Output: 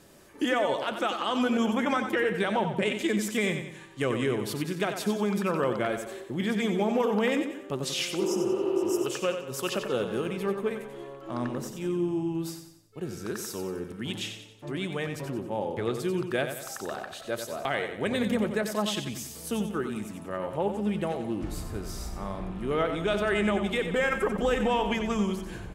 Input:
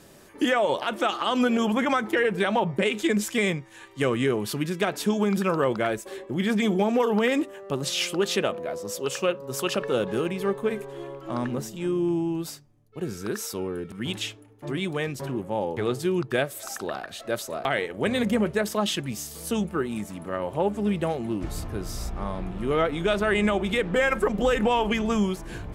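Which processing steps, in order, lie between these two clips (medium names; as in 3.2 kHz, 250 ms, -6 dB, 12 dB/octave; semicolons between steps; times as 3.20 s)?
spectral replace 8.23–9.01 s, 240–4900 Hz before; on a send: feedback delay 91 ms, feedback 44%, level -8 dB; on the sum: trim -4 dB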